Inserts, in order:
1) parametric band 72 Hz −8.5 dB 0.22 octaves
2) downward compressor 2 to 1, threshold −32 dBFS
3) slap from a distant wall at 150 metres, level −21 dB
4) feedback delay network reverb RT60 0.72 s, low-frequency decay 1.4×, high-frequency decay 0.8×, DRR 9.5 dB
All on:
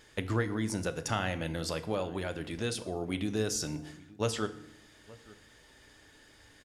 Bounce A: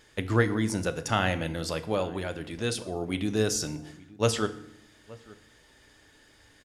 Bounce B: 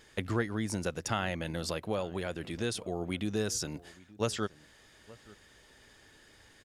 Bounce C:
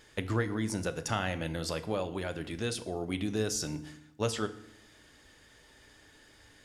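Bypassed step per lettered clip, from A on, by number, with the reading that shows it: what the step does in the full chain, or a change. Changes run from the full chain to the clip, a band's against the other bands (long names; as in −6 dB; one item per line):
2, average gain reduction 3.5 dB
4, change in momentary loudness spread −7 LU
3, change in momentary loudness spread −11 LU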